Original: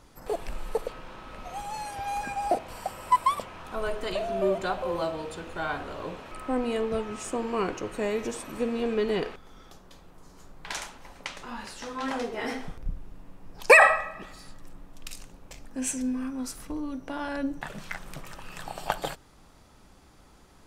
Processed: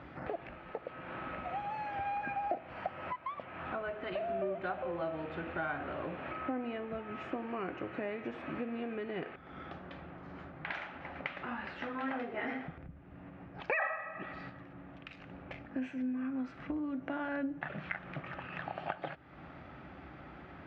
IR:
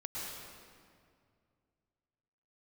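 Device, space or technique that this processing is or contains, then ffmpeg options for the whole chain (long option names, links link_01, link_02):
bass amplifier: -af "acompressor=threshold=-45dB:ratio=4,highpass=frequency=76:width=0.5412,highpass=frequency=76:width=1.3066,equalizer=frequency=100:width_type=q:width=4:gain=-9,equalizer=frequency=210:width_type=q:width=4:gain=-6,equalizer=frequency=450:width_type=q:width=4:gain=-9,equalizer=frequency=990:width_type=q:width=4:gain=-9,lowpass=frequency=2400:width=0.5412,lowpass=frequency=2400:width=1.3066,volume=11dB"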